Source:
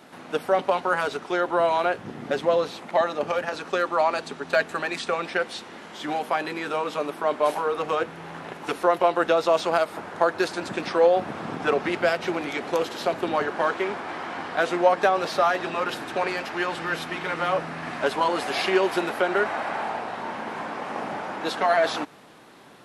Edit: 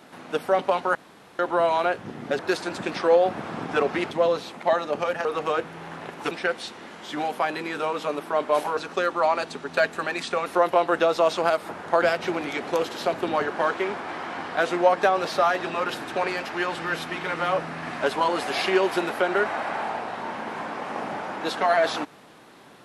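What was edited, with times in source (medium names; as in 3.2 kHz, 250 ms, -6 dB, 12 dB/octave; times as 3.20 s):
0.95–1.39 s: room tone
3.53–5.22 s: swap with 7.68–8.74 s
10.30–12.02 s: move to 2.39 s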